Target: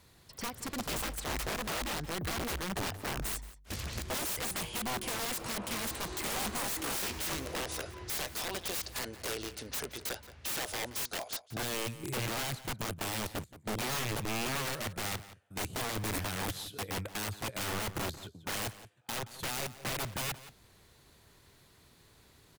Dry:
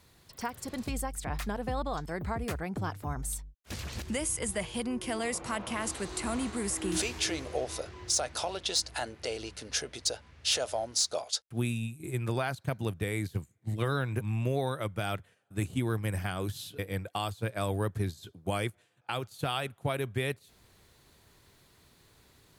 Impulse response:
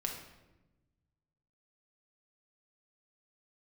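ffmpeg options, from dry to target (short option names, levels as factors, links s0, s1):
-filter_complex "[0:a]aeval=exprs='(mod(31.6*val(0)+1,2)-1)/31.6':c=same,asplit=2[s0][s1];[s1]adelay=174.9,volume=0.178,highshelf=f=4000:g=-3.94[s2];[s0][s2]amix=inputs=2:normalize=0"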